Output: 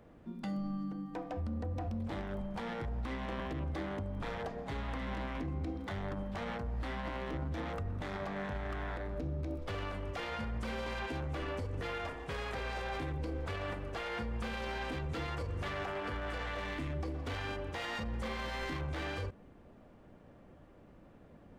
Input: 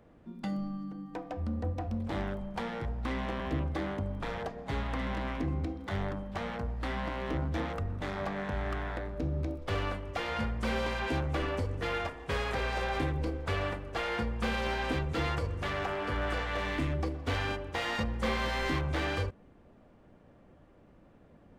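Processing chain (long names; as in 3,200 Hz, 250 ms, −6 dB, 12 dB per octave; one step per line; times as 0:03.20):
brickwall limiter −31.5 dBFS, peak gain reduction 11.5 dB
level +1 dB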